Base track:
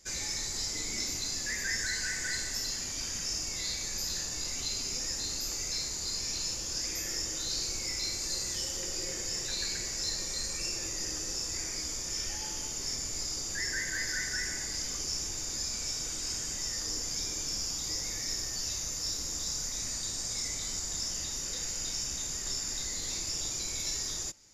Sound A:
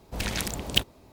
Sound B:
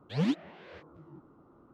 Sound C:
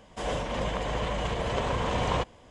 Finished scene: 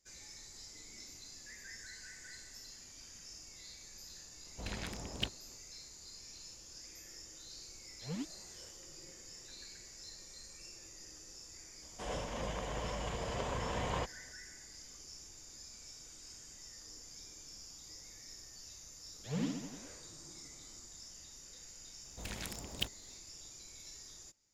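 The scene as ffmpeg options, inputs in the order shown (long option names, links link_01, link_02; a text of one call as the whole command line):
ffmpeg -i bed.wav -i cue0.wav -i cue1.wav -i cue2.wav -filter_complex "[1:a]asplit=2[link_01][link_02];[2:a]asplit=2[link_03][link_04];[0:a]volume=-17.5dB[link_05];[link_01]aemphasis=mode=reproduction:type=50fm[link_06];[link_04]aecho=1:1:60|129|208.4|299.6|404.5:0.631|0.398|0.251|0.158|0.1[link_07];[link_06]atrim=end=1.12,asetpts=PTS-STARTPTS,volume=-11dB,afade=type=in:duration=0.004:curve=hsin,afade=type=out:start_time=1.116:duration=0.004:curve=hsin,adelay=4460[link_08];[link_03]atrim=end=1.73,asetpts=PTS-STARTPTS,volume=-13dB,afade=type=in:duration=0.004:curve=hsin,afade=type=out:start_time=1.726:duration=0.004:curve=hsin,adelay=7910[link_09];[3:a]atrim=end=2.5,asetpts=PTS-STARTPTS,volume=-9.5dB,afade=type=in:duration=0.004:curve=hsin,afade=type=out:start_time=2.496:duration=0.004:curve=hsin,adelay=11820[link_10];[link_07]atrim=end=1.73,asetpts=PTS-STARTPTS,volume=-9.5dB,afade=type=in:duration=0.004:curve=hsin,afade=type=out:start_time=1.726:duration=0.004:curve=hsin,adelay=19140[link_11];[link_02]atrim=end=1.12,asetpts=PTS-STARTPTS,volume=-13.5dB,afade=type=in:duration=0.004:curve=hsin,afade=type=out:start_time=1.116:duration=0.004:curve=hsin,adelay=22050[link_12];[link_05][link_08][link_09][link_10][link_11][link_12]amix=inputs=6:normalize=0" out.wav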